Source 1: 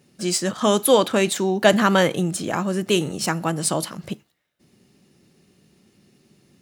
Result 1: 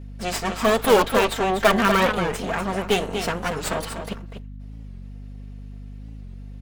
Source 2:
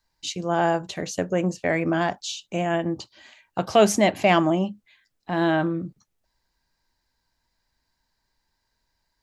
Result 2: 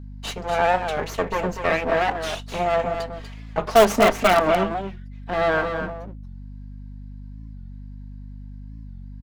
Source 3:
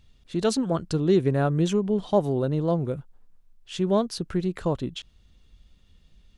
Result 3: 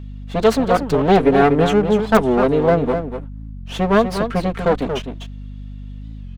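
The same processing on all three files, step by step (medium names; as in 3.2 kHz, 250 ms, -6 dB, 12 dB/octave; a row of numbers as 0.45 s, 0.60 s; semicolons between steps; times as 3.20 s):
comb filter that takes the minimum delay 4.4 ms; tone controls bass -9 dB, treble -11 dB; on a send: delay 243 ms -8 dB; on the sum: hum 50 Hz, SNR 14 dB; in parallel at -10 dB: integer overflow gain 13.5 dB; on the sum: warped record 45 rpm, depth 160 cents; peak normalisation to -2 dBFS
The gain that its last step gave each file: +1.0 dB, +3.5 dB, +9.0 dB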